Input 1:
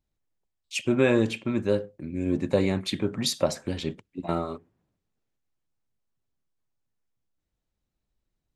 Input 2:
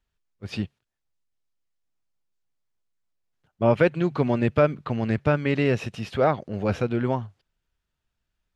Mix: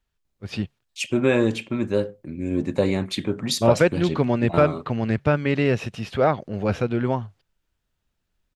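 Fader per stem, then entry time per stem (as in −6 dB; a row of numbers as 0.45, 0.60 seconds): +2.0, +1.5 decibels; 0.25, 0.00 seconds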